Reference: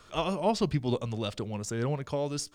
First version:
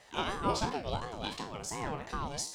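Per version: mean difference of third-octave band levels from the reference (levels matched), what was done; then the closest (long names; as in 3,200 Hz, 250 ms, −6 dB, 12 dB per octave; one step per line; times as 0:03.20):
9.0 dB: peak hold with a decay on every bin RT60 0.39 s
reversed playback
upward compression, threshold −39 dBFS
reversed playback
low-shelf EQ 370 Hz −8 dB
ring modulator whose carrier an LFO sweeps 450 Hz, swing 40%, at 2.8 Hz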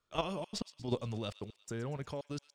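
6.5 dB: noise gate with hold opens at −43 dBFS
output level in coarse steps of 9 dB
gate pattern "xxxxx.x..x" 170 BPM −60 dB
delay with a high-pass on its return 118 ms, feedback 59%, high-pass 2,100 Hz, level −13.5 dB
level −2 dB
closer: second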